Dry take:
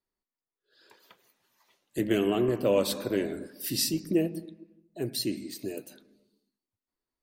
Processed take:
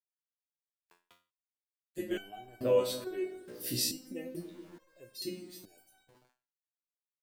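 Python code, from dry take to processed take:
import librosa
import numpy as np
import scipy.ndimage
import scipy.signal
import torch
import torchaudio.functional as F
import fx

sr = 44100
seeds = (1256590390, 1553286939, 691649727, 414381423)

y = fx.echo_wet_lowpass(x, sr, ms=144, feedback_pct=76, hz=410.0, wet_db=-16.0)
y = np.where(np.abs(y) >= 10.0 ** (-49.0 / 20.0), y, 0.0)
y = fx.peak_eq(y, sr, hz=590.0, db=3.0, octaves=0.52)
y = fx.rev_schroeder(y, sr, rt60_s=0.37, comb_ms=27, drr_db=17.0)
y = fx.resonator_held(y, sr, hz=2.3, low_hz=61.0, high_hz=760.0)
y = F.gain(torch.from_numpy(y), 4.0).numpy()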